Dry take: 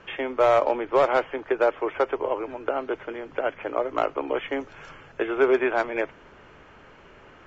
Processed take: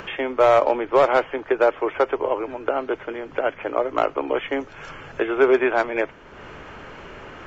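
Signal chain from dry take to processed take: upward compressor, threshold -34 dBFS; trim +3.5 dB

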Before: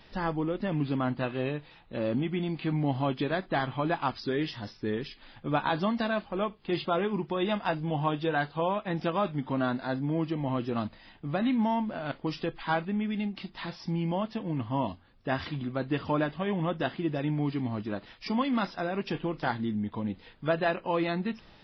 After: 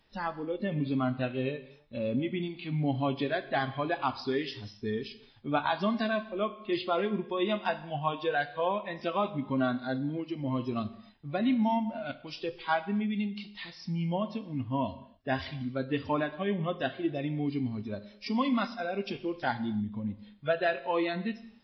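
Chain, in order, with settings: spectral noise reduction 13 dB; gated-style reverb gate 310 ms falling, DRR 12 dB

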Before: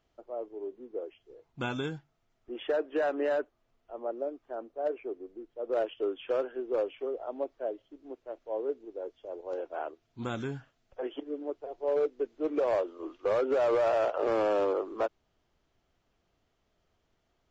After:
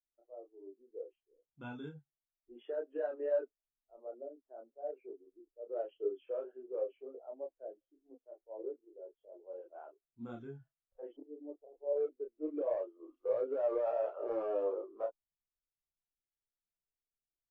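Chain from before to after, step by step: 11.13–11.93 s: low-pass 1.1 kHz 24 dB/octave; chorus voices 6, 0.24 Hz, delay 30 ms, depth 4.1 ms; spectral contrast expander 1.5:1; trim -4 dB

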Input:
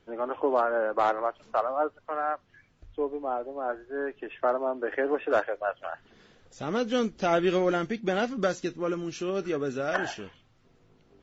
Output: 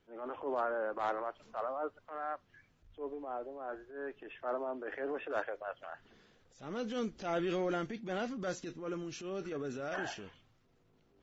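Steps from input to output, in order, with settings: transient shaper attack -9 dB, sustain +4 dB; trim -8.5 dB

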